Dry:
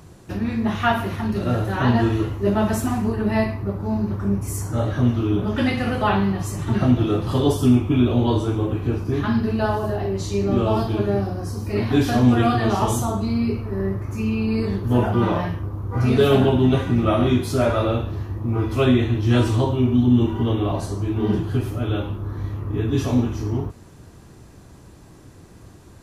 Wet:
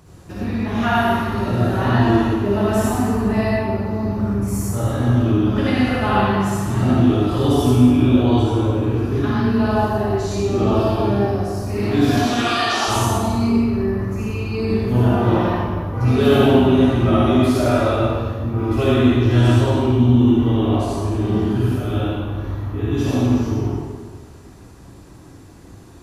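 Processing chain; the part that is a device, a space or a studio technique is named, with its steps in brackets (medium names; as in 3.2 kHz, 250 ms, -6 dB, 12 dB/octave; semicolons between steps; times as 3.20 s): 12.17–12.88 s: frequency weighting ITU-R 468; stairwell (reverberation RT60 1.6 s, pre-delay 49 ms, DRR -6.5 dB); trim -4 dB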